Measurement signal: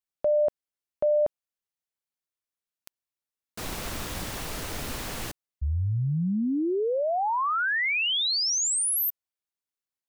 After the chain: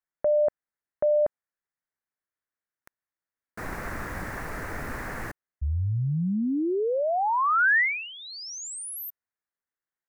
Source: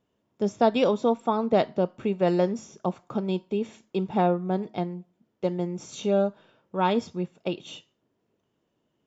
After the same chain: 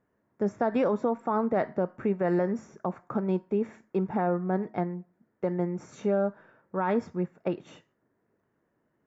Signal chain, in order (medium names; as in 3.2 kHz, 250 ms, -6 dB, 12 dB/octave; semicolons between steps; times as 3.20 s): resonant high shelf 2.4 kHz -10 dB, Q 3; peak limiter -17 dBFS